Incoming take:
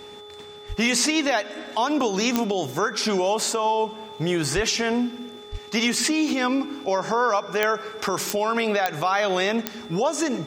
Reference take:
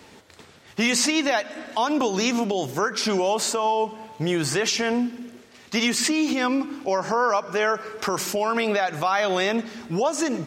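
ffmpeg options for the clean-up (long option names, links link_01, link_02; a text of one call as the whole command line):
ffmpeg -i in.wav -filter_complex "[0:a]adeclick=threshold=4,bandreject=frequency=416.3:width_type=h:width=4,bandreject=frequency=832.6:width_type=h:width=4,bandreject=frequency=1248.9:width_type=h:width=4,bandreject=frequency=3500:width=30,asplit=3[link_01][link_02][link_03];[link_01]afade=type=out:start_time=0.68:duration=0.02[link_04];[link_02]highpass=frequency=140:width=0.5412,highpass=frequency=140:width=1.3066,afade=type=in:start_time=0.68:duration=0.02,afade=type=out:start_time=0.8:duration=0.02[link_05];[link_03]afade=type=in:start_time=0.8:duration=0.02[link_06];[link_04][link_05][link_06]amix=inputs=3:normalize=0,asplit=3[link_07][link_08][link_09];[link_07]afade=type=out:start_time=4.55:duration=0.02[link_10];[link_08]highpass=frequency=140:width=0.5412,highpass=frequency=140:width=1.3066,afade=type=in:start_time=4.55:duration=0.02,afade=type=out:start_time=4.67:duration=0.02[link_11];[link_09]afade=type=in:start_time=4.67:duration=0.02[link_12];[link_10][link_11][link_12]amix=inputs=3:normalize=0,asplit=3[link_13][link_14][link_15];[link_13]afade=type=out:start_time=5.51:duration=0.02[link_16];[link_14]highpass=frequency=140:width=0.5412,highpass=frequency=140:width=1.3066,afade=type=in:start_time=5.51:duration=0.02,afade=type=out:start_time=5.63:duration=0.02[link_17];[link_15]afade=type=in:start_time=5.63:duration=0.02[link_18];[link_16][link_17][link_18]amix=inputs=3:normalize=0" out.wav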